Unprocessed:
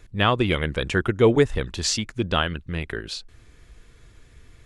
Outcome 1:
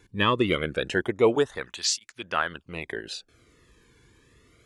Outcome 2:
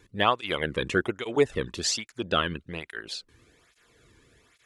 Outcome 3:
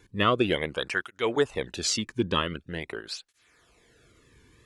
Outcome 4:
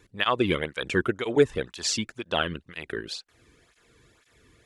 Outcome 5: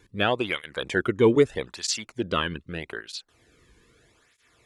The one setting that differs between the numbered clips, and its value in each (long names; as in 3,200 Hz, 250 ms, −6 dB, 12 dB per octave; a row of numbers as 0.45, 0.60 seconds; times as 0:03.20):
through-zero flanger with one copy inverted, nulls at: 0.25, 1.2, 0.45, 2, 0.8 Hertz